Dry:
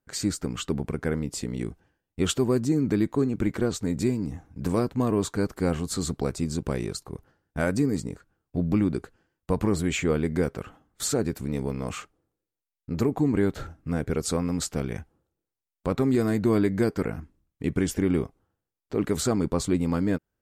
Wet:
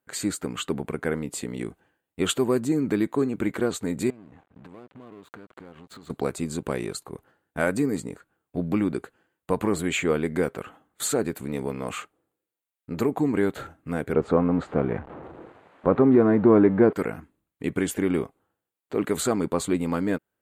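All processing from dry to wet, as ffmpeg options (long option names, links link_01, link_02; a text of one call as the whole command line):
ffmpeg -i in.wav -filter_complex "[0:a]asettb=1/sr,asplit=3[link_01][link_02][link_03];[link_01]atrim=end=4.104[link_04];[link_02]atrim=start=4.1:end=6.1,asetpts=PTS-STARTPTS,afade=type=in:duration=0.004:curve=qsin,afade=type=out:start_time=1.996:duration=0.004:curve=qsin,lowpass=3400,acompressor=threshold=-39dB:ratio=10:attack=3.2:release=140:knee=1:detection=peak,aeval=exprs='sgn(val(0))*max(abs(val(0))-0.002,0)':channel_layout=same[link_05];[link_03]atrim=start=6.096[link_06];[link_04][link_05]acrossfade=duration=0.004:curve1=hsin:curve2=qsin[link_07];[link_07][link_06]acrossfade=duration=0.004:curve1=qsin:curve2=hsin,asettb=1/sr,asplit=3[link_08][link_09][link_10];[link_08]atrim=end=14.134[link_11];[link_09]atrim=start=14.13:end=16.93,asetpts=PTS-STARTPTS,afade=type=in:duration=0.004:curve=qsin,afade=type=out:start_time=2.796:duration=0.004:curve=qsin,aeval=exprs='val(0)+0.5*0.0112*sgn(val(0))':channel_layout=same,lowpass=1200,acontrast=36[link_12];[link_10]atrim=start=16.926[link_13];[link_11][link_12]acrossfade=duration=0.004:curve1=hsin:curve2=qsin[link_14];[link_14][link_13]acrossfade=duration=0.004:curve1=qsin:curve2=hsin,highpass=frequency=350:poles=1,equalizer=frequency=5400:width_type=o:width=0.45:gain=-13,volume=4dB" out.wav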